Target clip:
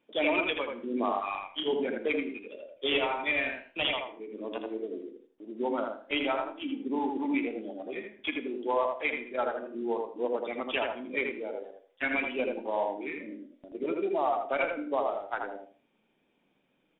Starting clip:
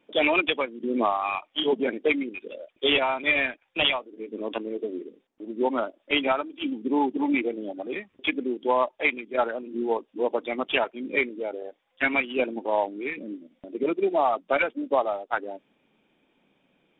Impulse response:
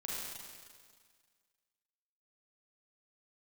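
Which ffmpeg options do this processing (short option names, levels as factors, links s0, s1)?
-filter_complex "[0:a]flanger=delay=7.9:depth=5.9:regen=84:speed=0.78:shape=triangular,asplit=2[s0][s1];[s1]adelay=81,lowpass=f=2200:p=1,volume=0.708,asplit=2[s2][s3];[s3]adelay=81,lowpass=f=2200:p=1,volume=0.23,asplit=2[s4][s5];[s5]adelay=81,lowpass=f=2200:p=1,volume=0.23[s6];[s0][s2][s4][s6]amix=inputs=4:normalize=0,asplit=2[s7][s8];[1:a]atrim=start_sample=2205,afade=t=out:st=0.15:d=0.01,atrim=end_sample=7056,adelay=33[s9];[s8][s9]afir=irnorm=-1:irlink=0,volume=0.211[s10];[s7][s10]amix=inputs=2:normalize=0,volume=0.75"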